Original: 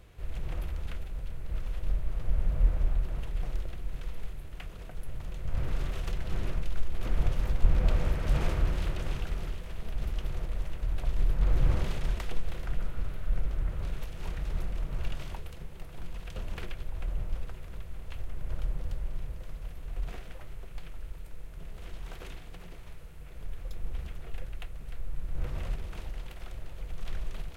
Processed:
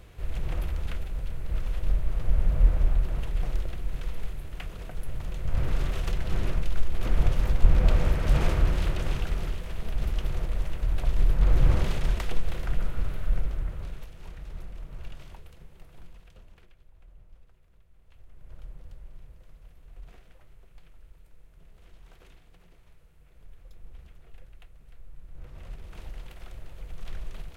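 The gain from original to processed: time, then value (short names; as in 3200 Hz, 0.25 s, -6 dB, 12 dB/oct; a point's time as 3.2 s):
13.24 s +4.5 dB
14.23 s -7 dB
15.98 s -7 dB
16.68 s -20 dB
17.88 s -20 dB
18.59 s -11 dB
25.49 s -11 dB
26.07 s -1.5 dB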